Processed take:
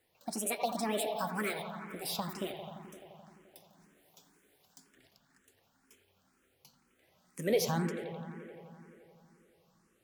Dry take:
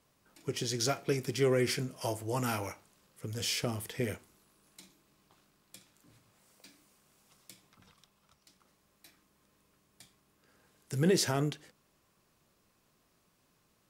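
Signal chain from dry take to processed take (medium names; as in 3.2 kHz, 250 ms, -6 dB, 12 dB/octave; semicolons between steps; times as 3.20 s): gliding tape speed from 174% -> 103%; bucket-brigade echo 86 ms, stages 2048, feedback 83%, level -9.5 dB; barber-pole phaser +2 Hz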